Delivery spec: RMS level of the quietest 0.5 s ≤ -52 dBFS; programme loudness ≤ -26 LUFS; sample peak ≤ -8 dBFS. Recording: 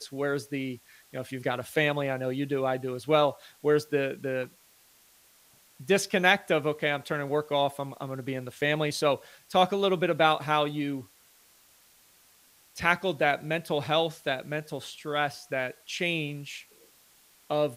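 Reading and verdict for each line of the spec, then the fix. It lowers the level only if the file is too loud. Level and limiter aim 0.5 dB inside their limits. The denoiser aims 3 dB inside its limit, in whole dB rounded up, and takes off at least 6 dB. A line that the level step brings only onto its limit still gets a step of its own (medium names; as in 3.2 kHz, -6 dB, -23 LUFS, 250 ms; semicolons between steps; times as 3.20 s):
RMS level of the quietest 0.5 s -60 dBFS: pass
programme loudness -28.0 LUFS: pass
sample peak -6.0 dBFS: fail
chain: peak limiter -8.5 dBFS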